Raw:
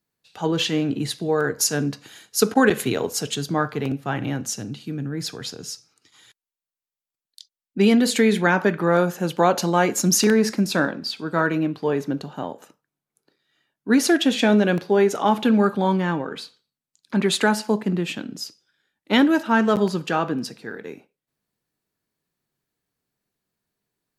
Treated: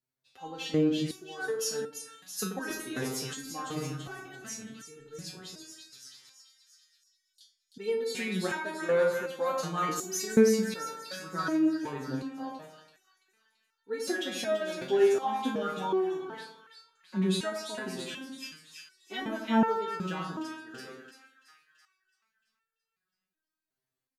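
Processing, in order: doubling 37 ms -10.5 dB; two-band feedback delay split 1.5 kHz, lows 88 ms, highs 335 ms, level -5 dB; resonator arpeggio 2.7 Hz 130–450 Hz

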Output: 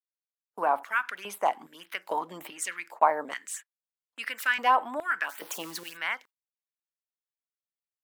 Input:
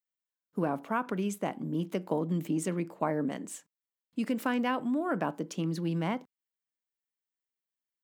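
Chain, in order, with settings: 5.29–5.97 s: zero-crossing glitches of -37.5 dBFS; LFO notch sine 1.7 Hz 530–7500 Hz; level rider gain up to 15.5 dB; gate -33 dBFS, range -22 dB; LFO high-pass square 1.2 Hz 850–1700 Hz; trim -8 dB

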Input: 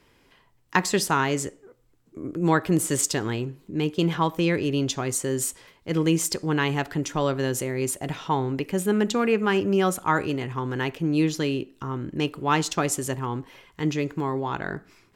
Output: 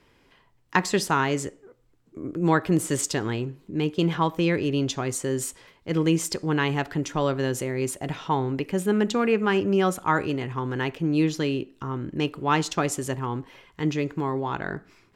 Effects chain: treble shelf 7.5 kHz -7.5 dB

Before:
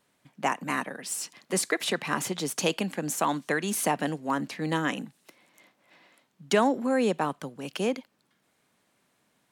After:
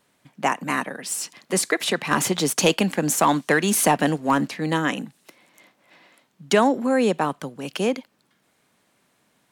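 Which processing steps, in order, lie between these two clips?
2.11–4.48 s: waveshaping leveller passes 1; trim +5 dB

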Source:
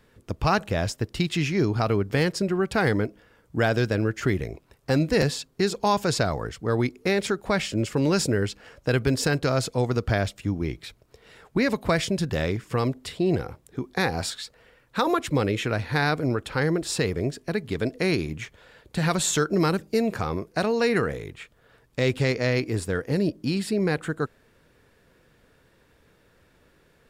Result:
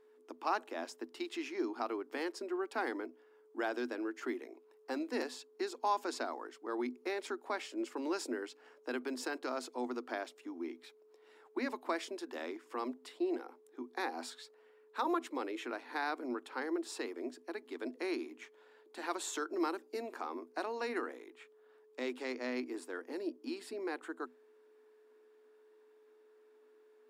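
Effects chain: rippled Chebyshev high-pass 240 Hz, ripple 9 dB; whistle 430 Hz -54 dBFS; trim -7.5 dB

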